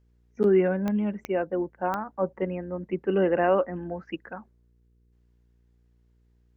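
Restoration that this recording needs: de-click; de-hum 59.2 Hz, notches 8

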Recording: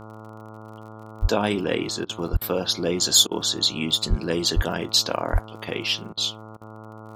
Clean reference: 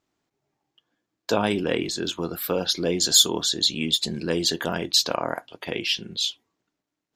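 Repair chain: de-click; de-hum 109.1 Hz, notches 13; de-plosive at 1.21/2.32/4.09/4.55/5.32; interpolate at 2.05/2.37/3.27/6.13/6.57, 42 ms

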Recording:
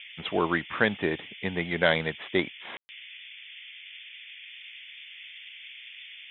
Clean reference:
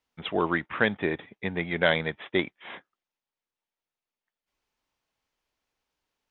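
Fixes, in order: room tone fill 2.77–2.89; noise print and reduce 30 dB

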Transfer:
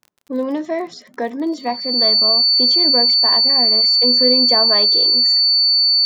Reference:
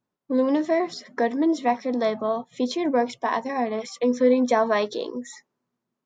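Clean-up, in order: de-click; notch 4500 Hz, Q 30

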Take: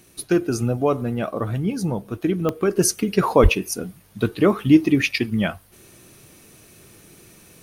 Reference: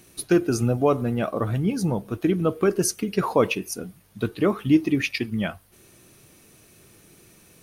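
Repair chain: de-click; 3.42–3.54 HPF 140 Hz 24 dB/oct; gain 0 dB, from 2.77 s -4.5 dB

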